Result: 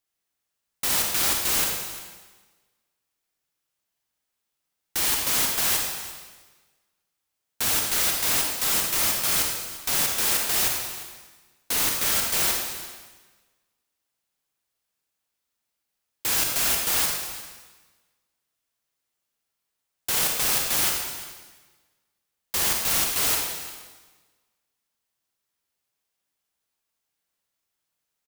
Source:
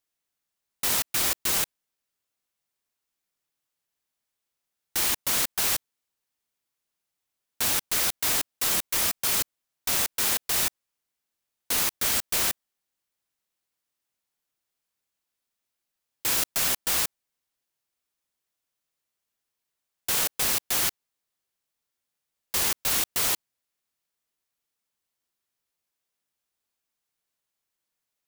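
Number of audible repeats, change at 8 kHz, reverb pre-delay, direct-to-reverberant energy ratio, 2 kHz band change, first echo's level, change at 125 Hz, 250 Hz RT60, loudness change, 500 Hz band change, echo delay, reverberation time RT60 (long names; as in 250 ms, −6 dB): 1, +2.5 dB, 31 ms, 0.5 dB, +2.5 dB, −17.0 dB, +3.0 dB, 1.4 s, +2.0 dB, +2.5 dB, 348 ms, 1.3 s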